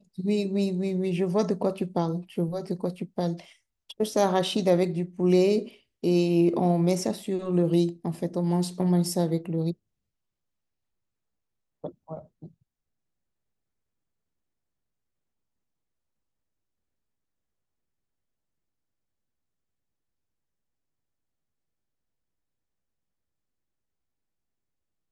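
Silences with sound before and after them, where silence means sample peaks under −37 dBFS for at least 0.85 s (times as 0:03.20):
0:09.73–0:11.84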